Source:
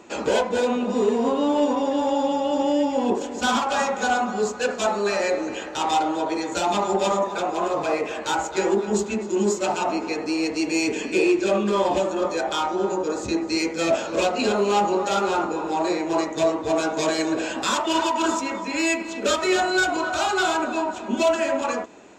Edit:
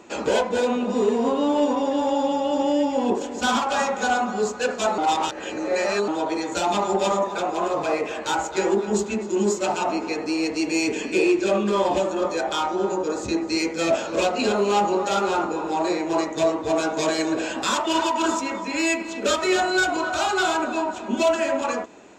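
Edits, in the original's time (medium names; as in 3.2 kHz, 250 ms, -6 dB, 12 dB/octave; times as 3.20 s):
4.98–6.08 s: reverse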